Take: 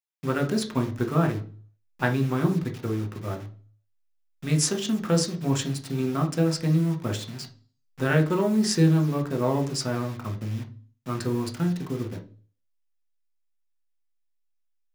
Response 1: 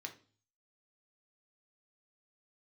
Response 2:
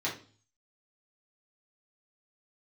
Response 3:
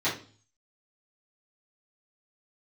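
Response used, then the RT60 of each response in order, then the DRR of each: 1; 0.40, 0.40, 0.40 s; 3.5, -6.5, -12.0 dB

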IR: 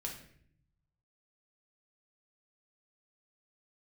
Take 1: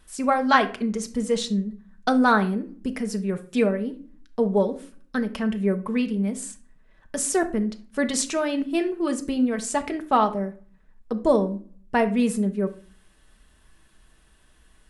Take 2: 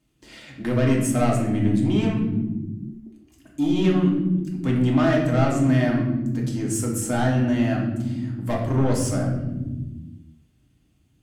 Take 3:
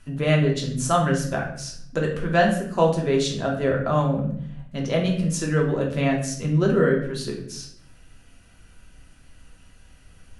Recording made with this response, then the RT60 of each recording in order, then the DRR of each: 3; 0.40 s, not exponential, 0.60 s; 5.5, -2.5, -0.5 dB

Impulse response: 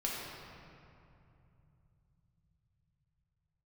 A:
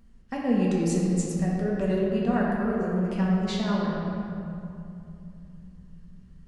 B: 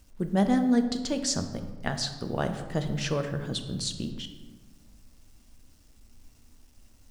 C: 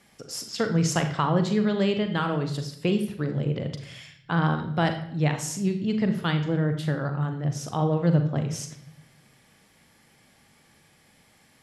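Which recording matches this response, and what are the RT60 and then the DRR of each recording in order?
A; 2.7, 1.4, 0.70 s; -5.0, 6.5, 6.0 dB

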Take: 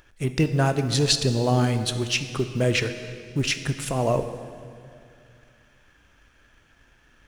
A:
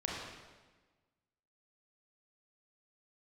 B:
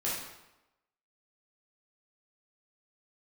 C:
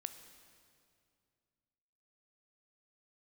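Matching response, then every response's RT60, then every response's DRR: C; 1.3, 0.95, 2.4 s; -3.5, -7.5, 9.0 dB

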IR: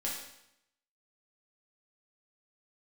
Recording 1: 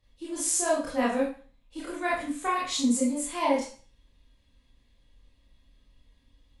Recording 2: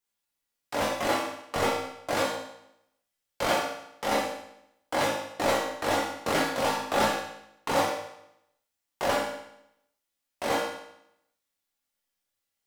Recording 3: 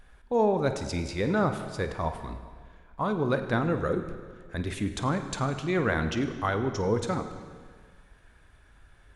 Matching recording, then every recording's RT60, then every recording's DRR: 2; 0.40, 0.80, 1.7 s; -7.5, -5.0, 7.5 dB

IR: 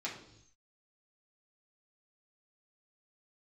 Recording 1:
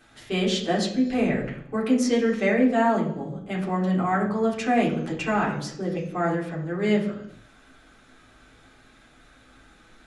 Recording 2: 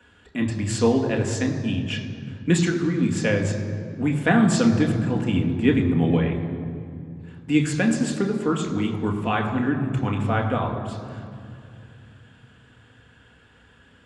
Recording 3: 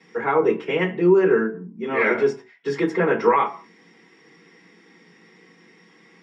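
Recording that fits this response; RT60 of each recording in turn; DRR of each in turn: 1; not exponential, 2.5 s, not exponential; -5.5, 2.0, -6.0 dB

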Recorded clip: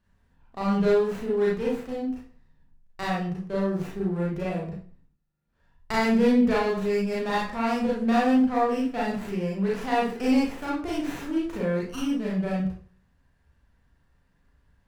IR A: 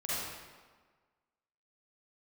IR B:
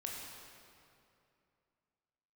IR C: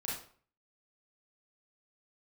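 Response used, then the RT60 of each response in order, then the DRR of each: C; 1.5, 2.7, 0.50 s; -10.0, -2.5, -6.5 dB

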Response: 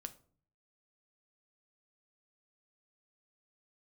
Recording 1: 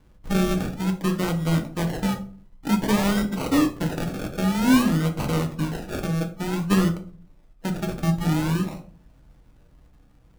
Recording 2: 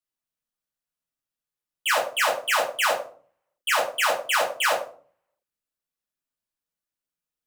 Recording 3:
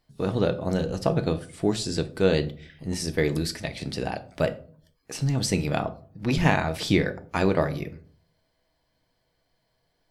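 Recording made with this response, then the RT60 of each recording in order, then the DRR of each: 3; 0.45, 0.45, 0.45 s; 3.5, -5.0, 8.5 dB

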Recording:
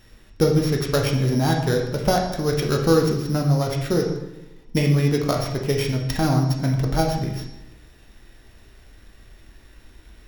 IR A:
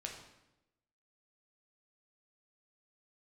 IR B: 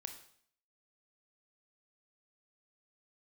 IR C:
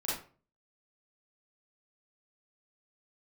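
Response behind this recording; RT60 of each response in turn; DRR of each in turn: A; 0.95, 0.60, 0.40 s; 0.0, 6.0, -8.5 dB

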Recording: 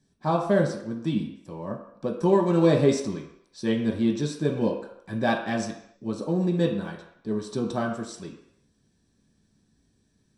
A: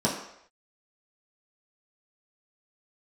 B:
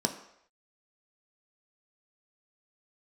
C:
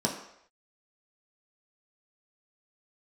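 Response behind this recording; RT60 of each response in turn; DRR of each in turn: C; not exponential, not exponential, not exponential; -6.0, 4.0, -1.5 dB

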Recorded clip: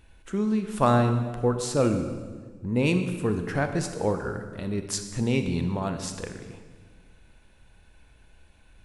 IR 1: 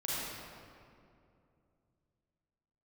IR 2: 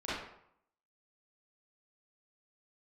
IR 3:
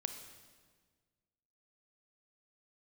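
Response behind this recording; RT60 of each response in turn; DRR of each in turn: 3; 2.5, 0.70, 1.6 s; -8.0, -11.5, 7.0 dB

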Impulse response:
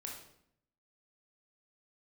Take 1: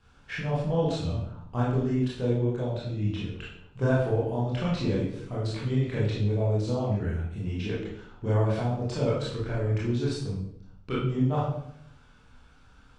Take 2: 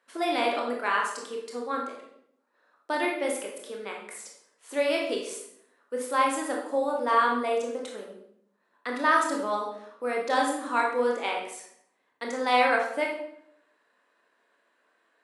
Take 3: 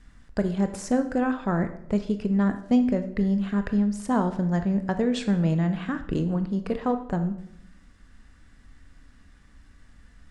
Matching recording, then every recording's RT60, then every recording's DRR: 2; 0.70, 0.70, 0.70 s; -8.0, -1.0, 8.0 dB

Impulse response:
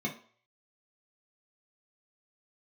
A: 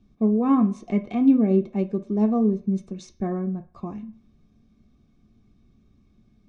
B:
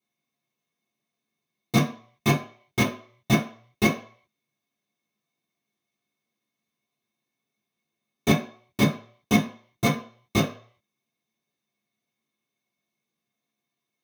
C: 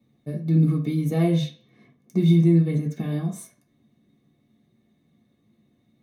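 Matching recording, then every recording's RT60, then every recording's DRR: C; 0.50, 0.50, 0.50 s; 5.0, -8.5, -3.5 dB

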